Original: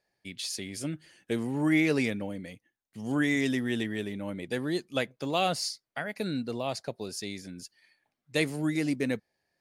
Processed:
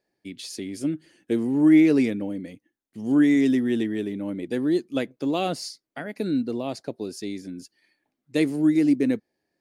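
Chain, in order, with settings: bell 300 Hz +13 dB 1.2 oct; gain -2.5 dB

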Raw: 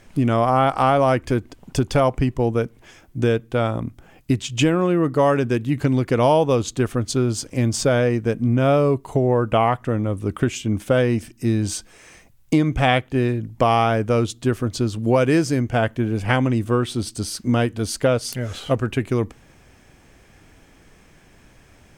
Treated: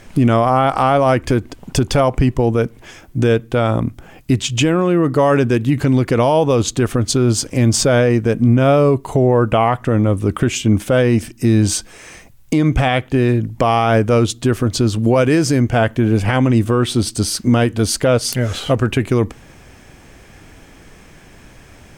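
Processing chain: limiter -14 dBFS, peak gain reduction 10 dB; gain +8.5 dB

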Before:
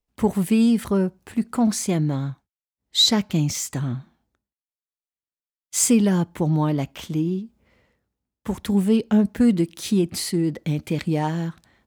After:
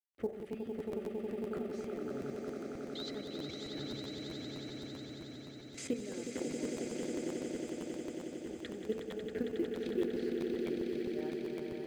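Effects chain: ending faded out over 1.65 s; LPF 1800 Hz 12 dB/oct; low shelf 160 Hz -12 dB; fixed phaser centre 410 Hz, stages 4; compressor 2.5:1, threshold -33 dBFS, peak gain reduction 9 dB; bell 110 Hz +2.5 dB 0.77 oct; level quantiser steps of 15 dB; on a send: swelling echo 91 ms, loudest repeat 8, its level -6.5 dB; on the sum: companded quantiser 8-bit; de-hum 63.18 Hz, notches 31; crackling interface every 0.13 s, samples 512, repeat, from 0.39

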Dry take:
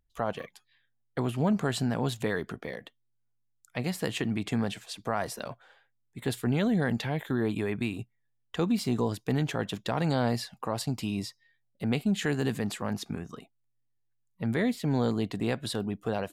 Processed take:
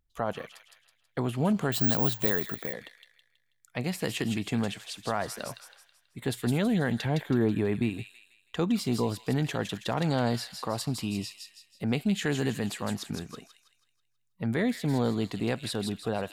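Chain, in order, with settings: 7.05–7.9 tilt shelf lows +4 dB, about 1100 Hz; on a send: thin delay 0.162 s, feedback 42%, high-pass 2700 Hz, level -3.5 dB; 1.72–2.73 on the sum: careless resampling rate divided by 2×, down filtered, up zero stuff

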